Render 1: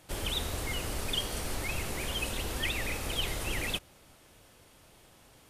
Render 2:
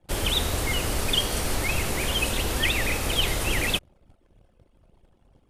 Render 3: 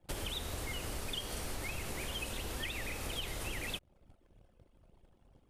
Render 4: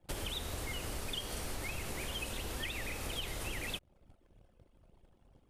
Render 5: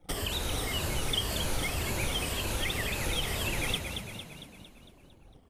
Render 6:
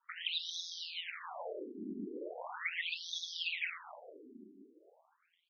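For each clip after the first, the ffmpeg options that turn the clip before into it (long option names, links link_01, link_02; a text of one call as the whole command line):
ffmpeg -i in.wav -af "anlmdn=0.001,volume=8.5dB" out.wav
ffmpeg -i in.wav -af "acompressor=threshold=-32dB:ratio=5,volume=-5dB" out.wav
ffmpeg -i in.wav -af anull out.wav
ffmpeg -i in.wav -filter_complex "[0:a]afftfilt=real='re*pow(10,10/40*sin(2*PI*(1.4*log(max(b,1)*sr/1024/100)/log(2)-(-1.9)*(pts-256)/sr)))':imag='im*pow(10,10/40*sin(2*PI*(1.4*log(max(b,1)*sr/1024/100)/log(2)-(-1.9)*(pts-256)/sr)))':win_size=1024:overlap=0.75,asplit=2[link_01][link_02];[link_02]asplit=7[link_03][link_04][link_05][link_06][link_07][link_08][link_09];[link_03]adelay=227,afreqshift=42,volume=-6.5dB[link_10];[link_04]adelay=454,afreqshift=84,volume=-11.7dB[link_11];[link_05]adelay=681,afreqshift=126,volume=-16.9dB[link_12];[link_06]adelay=908,afreqshift=168,volume=-22.1dB[link_13];[link_07]adelay=1135,afreqshift=210,volume=-27.3dB[link_14];[link_08]adelay=1362,afreqshift=252,volume=-32.5dB[link_15];[link_09]adelay=1589,afreqshift=294,volume=-37.7dB[link_16];[link_10][link_11][link_12][link_13][link_14][link_15][link_16]amix=inputs=7:normalize=0[link_17];[link_01][link_17]amix=inputs=2:normalize=0,volume=5.5dB" out.wav
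ffmpeg -i in.wav -af "aeval=exprs='val(0)*sin(2*PI*85*n/s)':channel_layout=same,afftfilt=real='re*between(b*sr/1024,280*pow(4700/280,0.5+0.5*sin(2*PI*0.39*pts/sr))/1.41,280*pow(4700/280,0.5+0.5*sin(2*PI*0.39*pts/sr))*1.41)':imag='im*between(b*sr/1024,280*pow(4700/280,0.5+0.5*sin(2*PI*0.39*pts/sr))/1.41,280*pow(4700/280,0.5+0.5*sin(2*PI*0.39*pts/sr))*1.41)':win_size=1024:overlap=0.75,volume=2dB" out.wav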